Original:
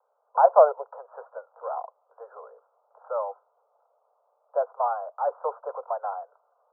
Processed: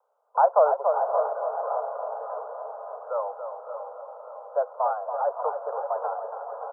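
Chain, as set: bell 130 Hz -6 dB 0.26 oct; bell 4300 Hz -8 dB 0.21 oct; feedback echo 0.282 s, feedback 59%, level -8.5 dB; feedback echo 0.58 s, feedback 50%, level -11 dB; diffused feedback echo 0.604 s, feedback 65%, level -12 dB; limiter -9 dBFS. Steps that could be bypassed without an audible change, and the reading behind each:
bell 130 Hz: input band starts at 400 Hz; bell 4300 Hz: input band ends at 1500 Hz

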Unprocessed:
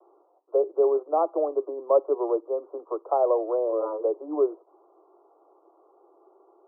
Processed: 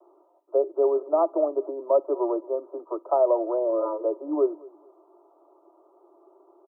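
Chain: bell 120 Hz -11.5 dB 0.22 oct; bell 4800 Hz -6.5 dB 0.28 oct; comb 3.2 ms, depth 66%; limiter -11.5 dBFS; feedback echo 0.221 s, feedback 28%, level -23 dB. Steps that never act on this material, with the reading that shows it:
bell 120 Hz: input band starts at 270 Hz; bell 4800 Hz: input band ends at 1400 Hz

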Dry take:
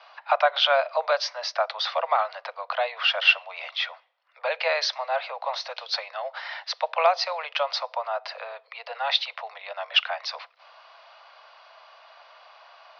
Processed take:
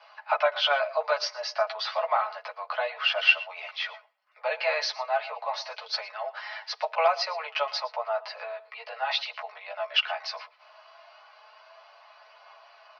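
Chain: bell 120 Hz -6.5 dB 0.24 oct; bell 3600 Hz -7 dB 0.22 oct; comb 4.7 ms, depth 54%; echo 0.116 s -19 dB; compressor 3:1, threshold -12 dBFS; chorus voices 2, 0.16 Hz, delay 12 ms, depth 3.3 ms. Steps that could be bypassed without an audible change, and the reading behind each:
bell 120 Hz: input band starts at 430 Hz

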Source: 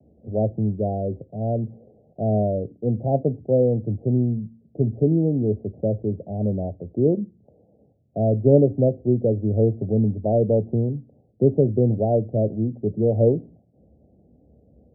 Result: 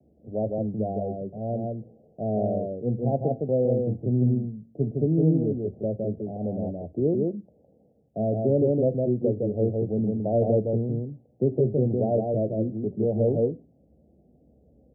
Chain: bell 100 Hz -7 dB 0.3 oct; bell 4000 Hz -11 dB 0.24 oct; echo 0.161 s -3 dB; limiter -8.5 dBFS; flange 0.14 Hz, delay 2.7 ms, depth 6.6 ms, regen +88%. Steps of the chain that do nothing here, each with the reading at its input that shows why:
bell 4000 Hz: input band ends at 810 Hz

